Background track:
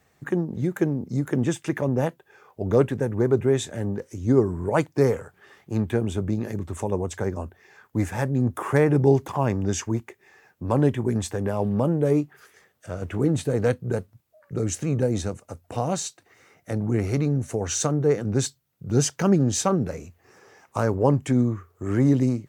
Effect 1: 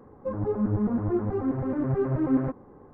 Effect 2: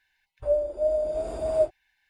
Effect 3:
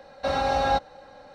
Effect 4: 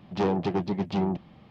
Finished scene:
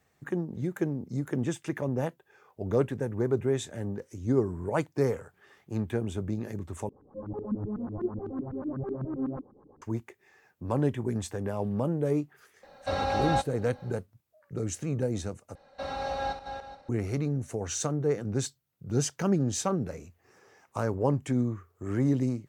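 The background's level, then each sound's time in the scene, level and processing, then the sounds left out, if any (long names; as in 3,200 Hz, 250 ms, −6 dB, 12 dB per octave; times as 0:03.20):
background track −6.5 dB
0:06.89: overwrite with 1 −10 dB + auto-filter low-pass saw up 8 Hz 210–1,600 Hz
0:12.63: mix in 3 −4.5 dB
0:15.55: overwrite with 3 −10 dB + feedback delay that plays each chunk backwards 211 ms, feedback 42%, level −7 dB
not used: 2, 4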